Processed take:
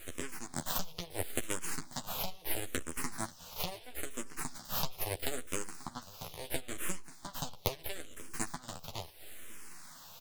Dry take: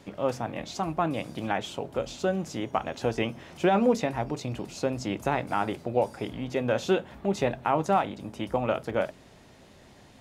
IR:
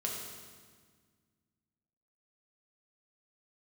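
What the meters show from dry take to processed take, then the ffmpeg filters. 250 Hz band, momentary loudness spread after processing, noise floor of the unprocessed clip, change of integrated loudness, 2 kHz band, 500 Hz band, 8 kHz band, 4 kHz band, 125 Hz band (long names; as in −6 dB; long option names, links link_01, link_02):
−15.5 dB, 10 LU, −54 dBFS, −10.5 dB, −8.0 dB, −17.0 dB, +5.5 dB, −2.0 dB, −11.5 dB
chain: -filter_complex "[0:a]highpass=frequency=68:width=0.5412,highpass=frequency=68:width=1.3066,bandreject=frequency=102.2:width_type=h:width=4,bandreject=frequency=204.4:width_type=h:width=4,bandreject=frequency=306.6:width_type=h:width=4,acompressor=threshold=-35dB:ratio=12,aeval=exprs='0.106*(cos(1*acos(clip(val(0)/0.106,-1,1)))-cos(1*PI/2))+0.0237*(cos(7*acos(clip(val(0)/0.106,-1,1)))-cos(7*PI/2))':channel_layout=same,aexciter=amount=13.2:drive=4.9:freq=3200,aeval=exprs='abs(val(0))':channel_layout=same,asplit=2[link_01][link_02];[link_02]adelay=12,volume=-4dB[link_03];[link_01][link_03]amix=inputs=2:normalize=0,aecho=1:1:538:0.106,asplit=2[link_04][link_05];[link_05]afreqshift=-0.75[link_06];[link_04][link_06]amix=inputs=2:normalize=1"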